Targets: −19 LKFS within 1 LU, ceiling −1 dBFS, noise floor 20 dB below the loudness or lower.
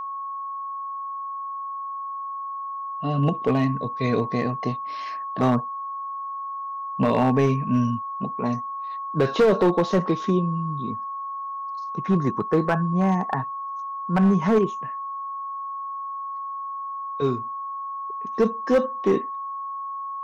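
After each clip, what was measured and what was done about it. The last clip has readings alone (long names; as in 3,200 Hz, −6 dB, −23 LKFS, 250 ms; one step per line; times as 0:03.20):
share of clipped samples 0.8%; peaks flattened at −13.0 dBFS; interfering tone 1,100 Hz; level of the tone −29 dBFS; integrated loudness −25.5 LKFS; sample peak −13.0 dBFS; target loudness −19.0 LKFS
→ clipped peaks rebuilt −13 dBFS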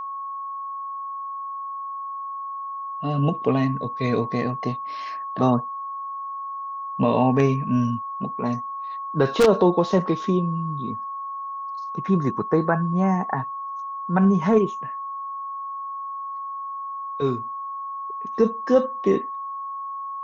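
share of clipped samples 0.0%; interfering tone 1,100 Hz; level of the tone −29 dBFS
→ notch filter 1,100 Hz, Q 30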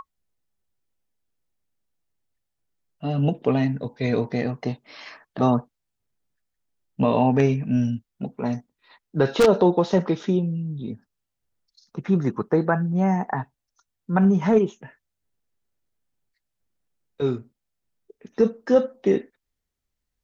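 interfering tone none found; integrated loudness −23.0 LKFS; sample peak −4.0 dBFS; target loudness −19.0 LKFS
→ level +4 dB
brickwall limiter −1 dBFS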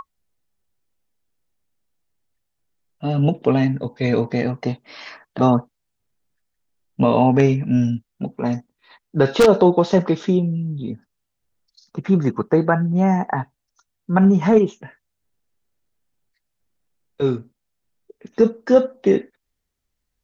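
integrated loudness −19.0 LKFS; sample peak −1.0 dBFS; background noise floor −78 dBFS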